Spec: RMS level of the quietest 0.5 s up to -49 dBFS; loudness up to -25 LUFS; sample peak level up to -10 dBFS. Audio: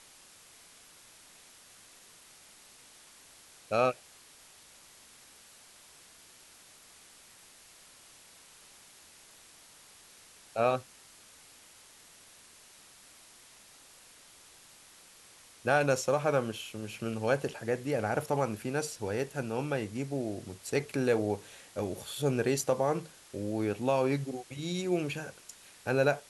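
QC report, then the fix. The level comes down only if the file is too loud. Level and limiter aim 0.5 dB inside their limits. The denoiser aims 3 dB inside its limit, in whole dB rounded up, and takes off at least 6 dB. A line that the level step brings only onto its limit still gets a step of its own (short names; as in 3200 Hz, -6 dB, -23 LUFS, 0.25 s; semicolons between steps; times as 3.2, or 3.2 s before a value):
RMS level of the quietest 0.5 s -56 dBFS: OK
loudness -32.0 LUFS: OK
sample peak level -13.5 dBFS: OK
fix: none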